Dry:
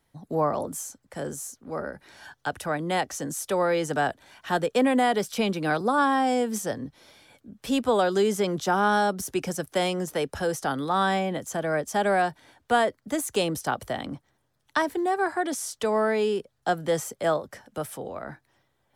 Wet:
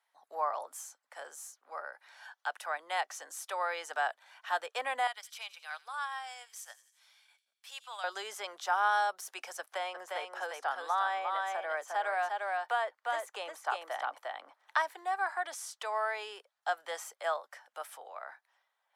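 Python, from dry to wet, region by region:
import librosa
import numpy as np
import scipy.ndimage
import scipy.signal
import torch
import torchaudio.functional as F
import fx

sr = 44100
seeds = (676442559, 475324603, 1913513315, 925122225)

y = fx.chain(x, sr, fx.tone_stack(knobs='10-0-10'),
    fx.transient(attack_db=-5, sustain_db=-9),
    fx.echo_wet_highpass(ms=88, feedback_pct=58, hz=3000.0, wet_db=-14), at=(5.07, 8.04))
y = fx.chain(y, sr, fx.high_shelf(hz=2900.0, db=-9.5),
    fx.echo_single(ms=352, db=-4.5),
    fx.band_squash(depth_pct=70), at=(9.59, 14.77))
y = scipy.signal.sosfilt(scipy.signal.butter(4, 760.0, 'highpass', fs=sr, output='sos'), y)
y = fx.high_shelf(y, sr, hz=4200.0, db=-8.5)
y = y * 10.0 ** (-3.0 / 20.0)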